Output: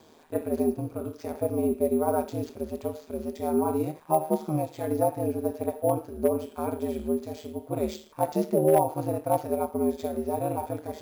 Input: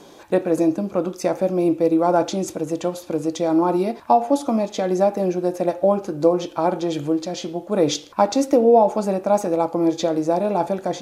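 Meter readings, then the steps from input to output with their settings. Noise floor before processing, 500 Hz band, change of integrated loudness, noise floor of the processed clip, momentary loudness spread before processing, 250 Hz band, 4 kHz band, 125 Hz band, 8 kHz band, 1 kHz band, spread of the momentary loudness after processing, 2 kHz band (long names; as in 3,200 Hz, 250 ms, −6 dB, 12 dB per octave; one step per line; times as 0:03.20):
−43 dBFS, −7.5 dB, −8.0 dB, −54 dBFS, 8 LU, −8.5 dB, below −15 dB, −3.5 dB, −9.0 dB, −8.5 dB, 10 LU, −11.5 dB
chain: harmonic and percussive parts rebalanced percussive −14 dB
bad sample-rate conversion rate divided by 4×, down none, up hold
gain into a clipping stage and back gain 7.5 dB
ring modulation 78 Hz
level −3.5 dB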